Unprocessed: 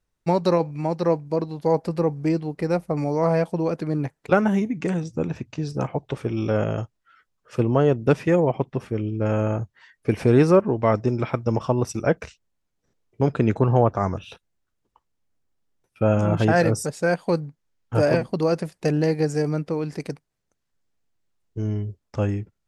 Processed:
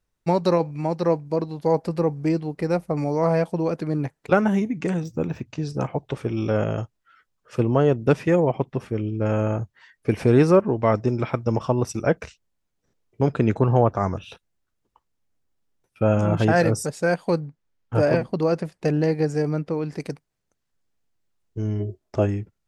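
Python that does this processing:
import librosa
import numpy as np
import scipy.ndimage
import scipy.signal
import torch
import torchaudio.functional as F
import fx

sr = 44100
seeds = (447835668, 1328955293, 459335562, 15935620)

y = fx.resample_linear(x, sr, factor=2, at=(5.03, 5.46))
y = fx.high_shelf(y, sr, hz=5500.0, db=-8.5, at=(17.35, 19.97))
y = fx.small_body(y, sr, hz=(370.0, 640.0), ring_ms=45, db=fx.line((21.79, 16.0), (22.25, 12.0)), at=(21.79, 22.25), fade=0.02)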